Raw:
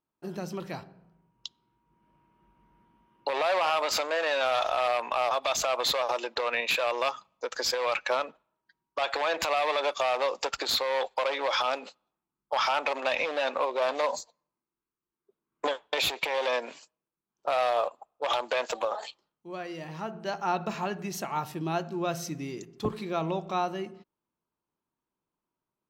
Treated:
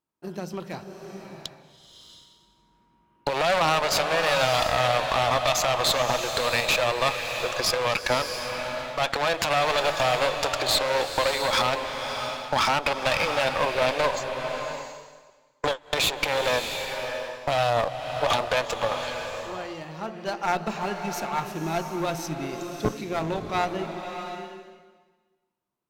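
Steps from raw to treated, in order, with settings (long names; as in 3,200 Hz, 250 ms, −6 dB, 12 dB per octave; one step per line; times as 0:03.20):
harmonic generator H 7 −22 dB, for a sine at −15 dBFS
asymmetric clip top −31 dBFS
slow-attack reverb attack 680 ms, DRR 5.5 dB
level +7 dB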